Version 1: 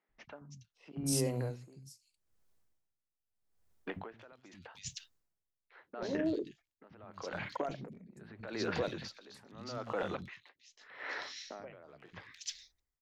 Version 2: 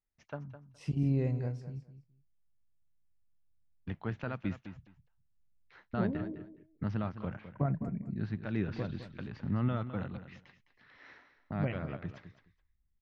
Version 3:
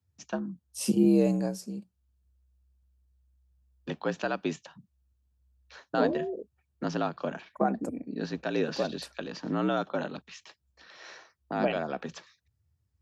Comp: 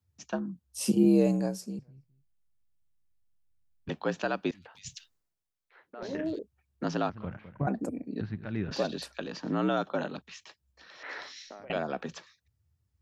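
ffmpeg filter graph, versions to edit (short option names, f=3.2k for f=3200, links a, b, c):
-filter_complex "[1:a]asplit=3[a][b][c];[0:a]asplit=2[d][e];[2:a]asplit=6[f][g][h][i][j][k];[f]atrim=end=1.792[l];[a]atrim=start=1.788:end=3.892[m];[g]atrim=start=3.888:end=4.512[n];[d]atrim=start=4.508:end=6.392[o];[h]atrim=start=6.388:end=7.102[p];[b]atrim=start=7.098:end=7.672[q];[i]atrim=start=7.668:end=8.212[r];[c]atrim=start=8.208:end=8.712[s];[j]atrim=start=8.708:end=11.032[t];[e]atrim=start=11.028:end=11.702[u];[k]atrim=start=11.698[v];[l][m]acrossfade=d=0.004:c1=hsin:c2=hsin[w];[w][n]acrossfade=d=0.004:c1=hsin:c2=hsin[x];[x][o]acrossfade=d=0.004:c1=hsin:c2=hsin[y];[y][p]acrossfade=d=0.004:c1=hsin:c2=hsin[z];[z][q]acrossfade=d=0.004:c1=hsin:c2=hsin[aa];[aa][r]acrossfade=d=0.004:c1=hsin:c2=hsin[ab];[ab][s]acrossfade=d=0.004:c1=hsin:c2=hsin[ac];[ac][t]acrossfade=d=0.004:c1=hsin:c2=hsin[ad];[ad][u]acrossfade=d=0.004:c1=hsin:c2=hsin[ae];[ae][v]acrossfade=d=0.004:c1=hsin:c2=hsin"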